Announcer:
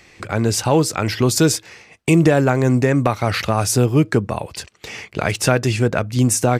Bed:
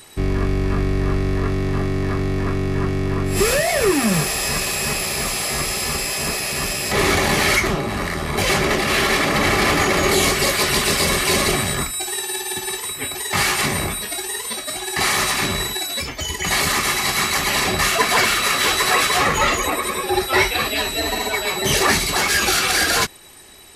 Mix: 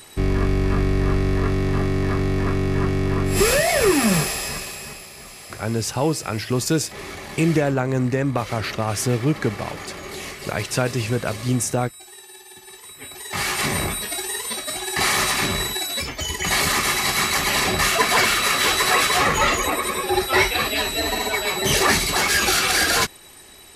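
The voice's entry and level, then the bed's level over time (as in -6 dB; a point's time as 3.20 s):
5.30 s, -5.5 dB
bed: 4.14 s 0 dB
5.11 s -17.5 dB
12.63 s -17.5 dB
13.75 s -1 dB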